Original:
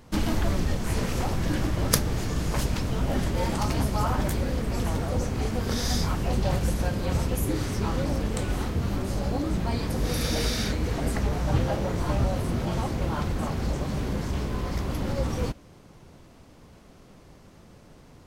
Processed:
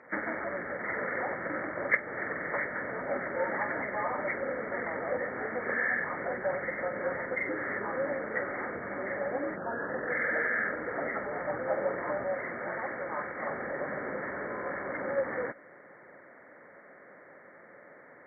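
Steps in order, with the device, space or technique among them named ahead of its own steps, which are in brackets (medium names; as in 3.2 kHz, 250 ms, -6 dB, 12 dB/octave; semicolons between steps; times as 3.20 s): 9.55–10.09 s: low-pass 4.5 kHz -> 8.5 kHz 24 dB/octave; hearing aid with frequency lowering (knee-point frequency compression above 1.2 kHz 4:1; compression 3:1, threshold -27 dBFS, peak gain reduction 12 dB; cabinet simulation 380–6400 Hz, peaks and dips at 560 Hz +8 dB, 1.8 kHz +3 dB, 3.5 kHz -8 dB); 12.34–13.47 s: tilt shelf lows -4 dB, about 1.4 kHz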